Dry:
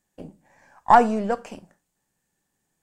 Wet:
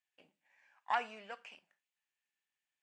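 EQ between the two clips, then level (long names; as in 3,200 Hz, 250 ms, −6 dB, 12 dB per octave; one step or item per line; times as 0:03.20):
resonant band-pass 2,600 Hz, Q 2.5
−3.5 dB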